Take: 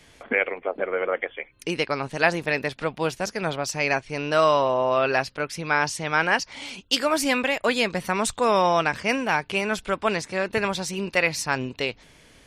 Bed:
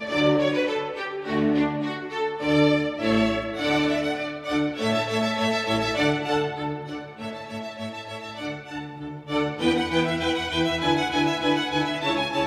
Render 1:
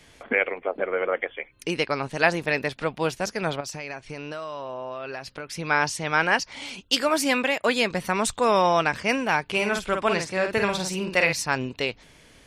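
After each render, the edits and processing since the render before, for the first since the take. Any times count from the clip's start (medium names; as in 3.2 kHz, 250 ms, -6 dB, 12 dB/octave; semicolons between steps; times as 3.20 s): 3.60–5.56 s: compression 10:1, threshold -30 dBFS; 7.09–7.91 s: high-pass 120 Hz; 9.44–11.33 s: doubling 49 ms -5.5 dB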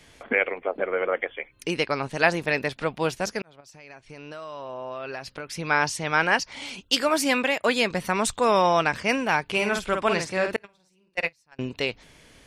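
3.42–4.98 s: fade in; 10.56–11.59 s: gate -19 dBFS, range -36 dB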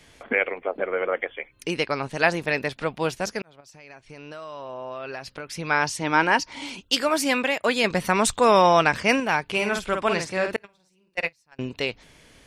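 6.01–6.78 s: small resonant body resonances 300/940 Hz, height 10 dB; 7.84–9.20 s: gain +3.5 dB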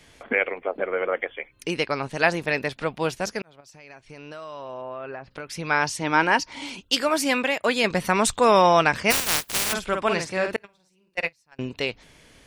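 4.81–5.30 s: low-pass 2.8 kHz -> 1.3 kHz; 9.10–9.72 s: spectral contrast reduction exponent 0.11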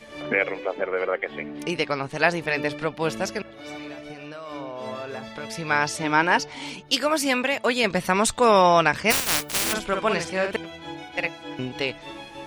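add bed -14.5 dB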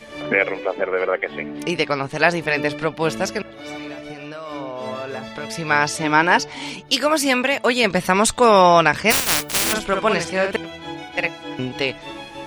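trim +4.5 dB; peak limiter -2 dBFS, peak gain reduction 2 dB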